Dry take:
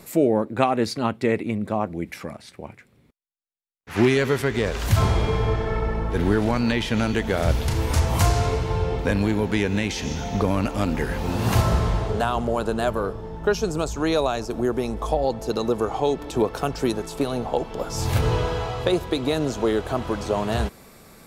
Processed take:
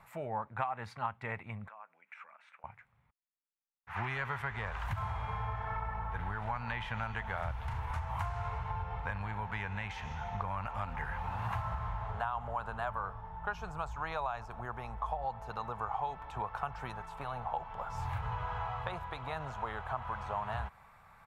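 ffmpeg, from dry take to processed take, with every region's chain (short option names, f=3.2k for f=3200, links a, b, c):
-filter_complex "[0:a]asettb=1/sr,asplit=3[a][b][c];[a]atrim=end=1.684[d];[b]atrim=start=1.68:end=2.64,asetpts=PTS-STARTPTS,afade=t=in:d=0.004:c=qsin,afade=t=out:st=0.956:d=0.004:c=qsin,acompressor=threshold=-44dB:ratio=2.5:attack=3.2:release=140:knee=1:detection=peak,highpass=f=310:w=0.5412,highpass=f=310:w=1.3066,equalizer=f=360:t=q:w=4:g=-10,equalizer=f=790:t=q:w=4:g=-7,equalizer=f=1.4k:t=q:w=4:g=6,equalizer=f=2.5k:t=q:w=4:g=9,equalizer=f=4.7k:t=q:w=4:g=-7,lowpass=f=8.8k:w=0.5412,lowpass=f=8.8k:w=1.3066[e];[c]atrim=start=2.636[f];[d][e]acrossfade=d=0.004:c1=hsin:c2=qsin[g];[g][f]acrossfade=d=0.004:c1=qsin:c2=hsin,asettb=1/sr,asplit=3[h][i][j];[h]atrim=end=4.974[k];[i]atrim=start=4.97:end=6.11,asetpts=PTS-STARTPTS,afade=t=in:d=0.004:c=qsin,afade=t=out:st=1.136:d=0.004:c=qsin,highpass=48,highshelf=f=9.4k:g=11[l];[j]atrim=start=6.106[m];[k][l]acrossfade=d=0.004:c1=hsin:c2=qsin[n];[n][m]acrossfade=d=0.004:c1=qsin:c2=hsin,firequalizer=gain_entry='entry(110,0);entry(300,-24);entry(850,5);entry(4700,-20)':delay=0.05:min_phase=1,acompressor=threshold=-24dB:ratio=6,lowshelf=f=370:g=-4.5,volume=-6dB"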